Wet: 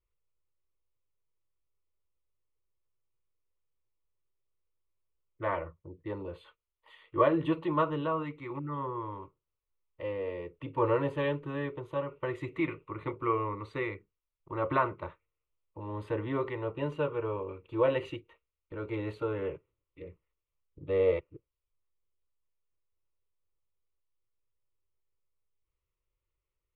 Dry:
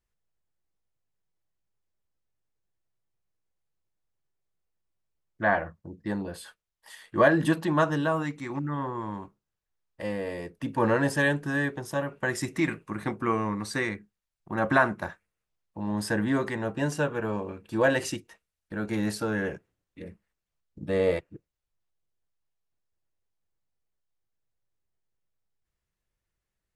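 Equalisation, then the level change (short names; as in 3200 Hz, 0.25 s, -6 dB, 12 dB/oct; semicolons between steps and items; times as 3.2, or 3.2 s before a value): air absorption 270 m; fixed phaser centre 1100 Hz, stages 8; 0.0 dB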